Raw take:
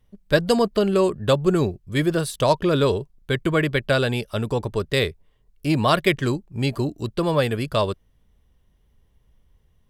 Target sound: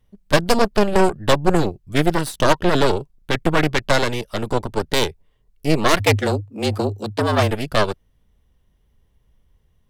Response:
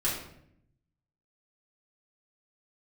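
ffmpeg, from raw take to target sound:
-filter_complex "[0:a]aeval=exprs='0.596*(cos(1*acos(clip(val(0)/0.596,-1,1)))-cos(1*PI/2))+0.188*(cos(6*acos(clip(val(0)/0.596,-1,1)))-cos(6*PI/2))':c=same,asplit=3[a][b][c];[a]afade=t=out:st=5.99:d=0.02[d];[b]afreqshift=100,afade=t=in:st=5.99:d=0.02,afade=t=out:st=7.5:d=0.02[e];[c]afade=t=in:st=7.5:d=0.02[f];[d][e][f]amix=inputs=3:normalize=0"

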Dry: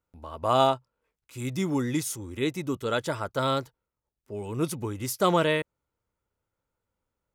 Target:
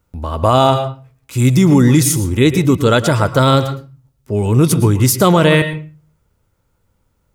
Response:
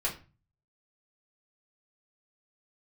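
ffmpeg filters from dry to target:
-filter_complex "[0:a]bass=f=250:g=8,treble=f=4k:g=2,asplit=2[a][b];[1:a]atrim=start_sample=2205,adelay=109[c];[b][c]afir=irnorm=-1:irlink=0,volume=-17.5dB[d];[a][d]amix=inputs=2:normalize=0,alimiter=level_in=16dB:limit=-1dB:release=50:level=0:latency=1,volume=-1dB"

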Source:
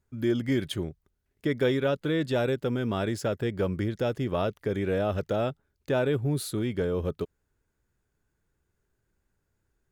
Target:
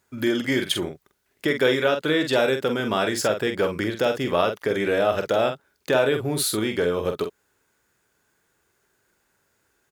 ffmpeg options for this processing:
-filter_complex "[0:a]highpass=f=700:p=1,asplit=2[a][b];[b]acompressor=threshold=-39dB:ratio=6,volume=3dB[c];[a][c]amix=inputs=2:normalize=0,asplit=2[d][e];[e]adelay=46,volume=-7dB[f];[d][f]amix=inputs=2:normalize=0,volume=7dB"

